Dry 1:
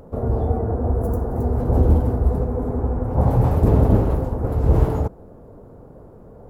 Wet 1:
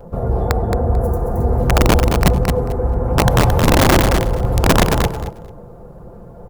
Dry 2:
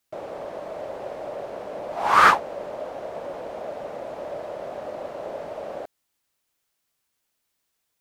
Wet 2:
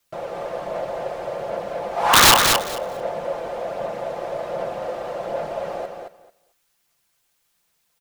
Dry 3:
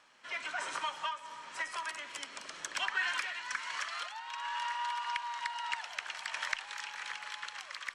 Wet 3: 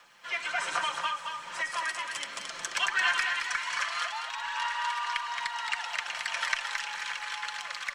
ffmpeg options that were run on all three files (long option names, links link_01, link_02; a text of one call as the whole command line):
ffmpeg -i in.wav -filter_complex "[0:a]equalizer=frequency=320:width_type=o:width=0.64:gain=-6,aecho=1:1:5.8:0.45,adynamicequalizer=threshold=0.0178:dfrequency=170:dqfactor=3:tfrequency=170:tqfactor=3:attack=5:release=100:ratio=0.375:range=2:mode=cutabove:tftype=bell,aphaser=in_gain=1:out_gain=1:delay=2.6:decay=0.27:speed=1.3:type=sinusoidal,asplit=2[link_01][link_02];[link_02]asoftclip=type=tanh:threshold=-13.5dB,volume=-3.5dB[link_03];[link_01][link_03]amix=inputs=2:normalize=0,acrusher=bits=11:mix=0:aa=0.000001,aeval=exprs='(mod(2.11*val(0)+1,2)-1)/2.11':channel_layout=same,asplit=2[link_04][link_05];[link_05]aecho=0:1:221|442|663:0.531|0.0903|0.0153[link_06];[link_04][link_06]amix=inputs=2:normalize=0" out.wav